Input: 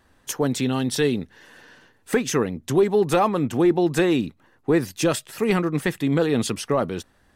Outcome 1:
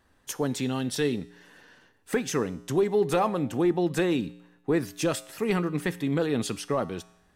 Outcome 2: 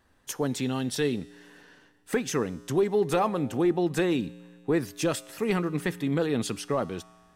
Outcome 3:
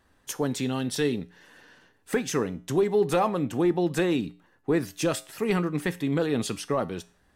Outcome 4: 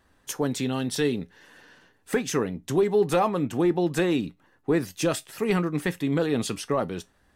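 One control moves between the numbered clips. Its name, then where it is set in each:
feedback comb, decay: 0.86 s, 2 s, 0.41 s, 0.18 s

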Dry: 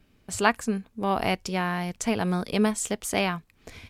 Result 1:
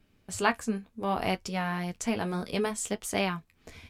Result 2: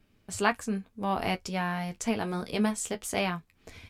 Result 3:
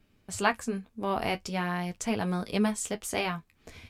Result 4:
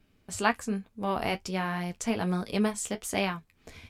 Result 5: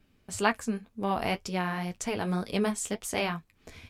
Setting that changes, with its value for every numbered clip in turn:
flange, rate: 0.65 Hz, 0.22 Hz, 0.43 Hz, 1.2 Hz, 2 Hz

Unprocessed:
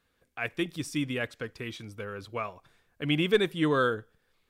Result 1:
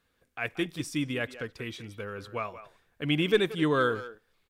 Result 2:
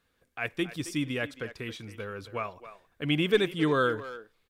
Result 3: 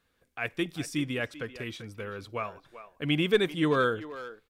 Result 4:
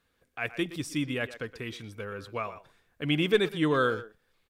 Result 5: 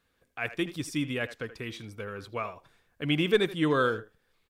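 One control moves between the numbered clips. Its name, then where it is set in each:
speakerphone echo, time: 180 ms, 270 ms, 390 ms, 120 ms, 80 ms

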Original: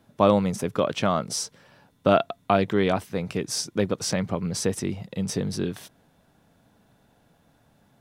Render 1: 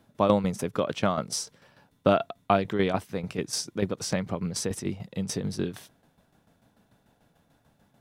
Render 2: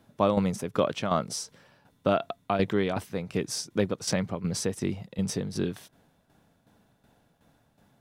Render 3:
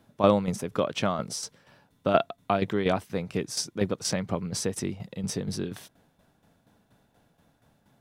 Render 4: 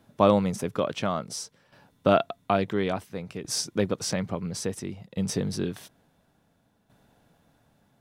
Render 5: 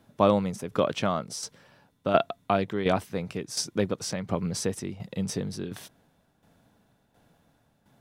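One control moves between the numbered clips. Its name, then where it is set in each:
tremolo, rate: 6.8 Hz, 2.7 Hz, 4.2 Hz, 0.58 Hz, 1.4 Hz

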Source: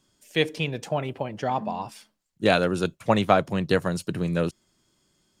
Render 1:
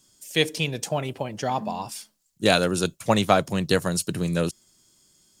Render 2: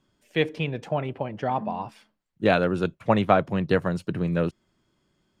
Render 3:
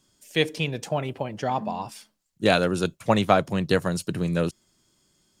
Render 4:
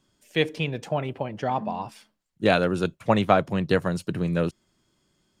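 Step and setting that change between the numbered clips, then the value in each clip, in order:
tone controls, treble: +13 dB, -14 dB, +4 dB, -5 dB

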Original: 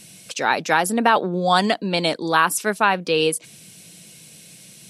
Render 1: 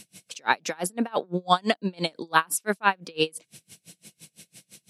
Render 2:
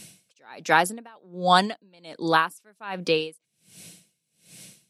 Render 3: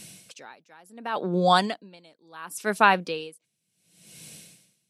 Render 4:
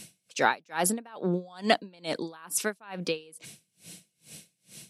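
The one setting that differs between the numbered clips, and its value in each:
logarithmic tremolo, rate: 5.9 Hz, 1.3 Hz, 0.7 Hz, 2.3 Hz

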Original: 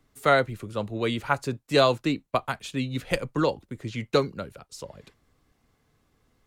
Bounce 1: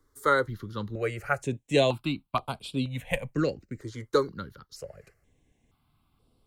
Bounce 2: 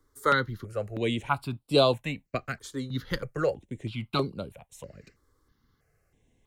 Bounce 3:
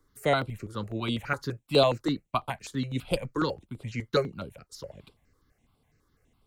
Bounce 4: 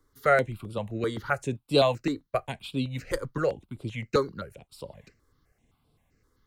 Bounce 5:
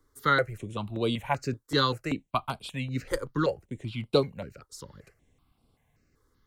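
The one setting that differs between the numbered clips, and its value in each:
stepped phaser, rate: 2.1 Hz, 3.1 Hz, 12 Hz, 7.7 Hz, 5.2 Hz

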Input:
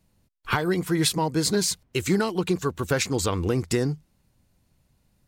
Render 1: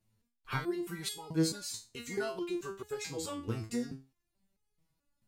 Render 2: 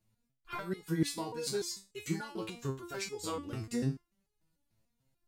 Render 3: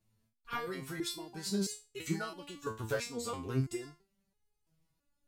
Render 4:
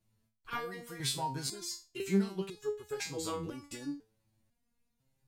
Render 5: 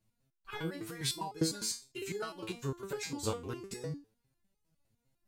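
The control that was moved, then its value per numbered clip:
resonator arpeggio, rate: 4.6 Hz, 6.8 Hz, 3 Hz, 2 Hz, 9.9 Hz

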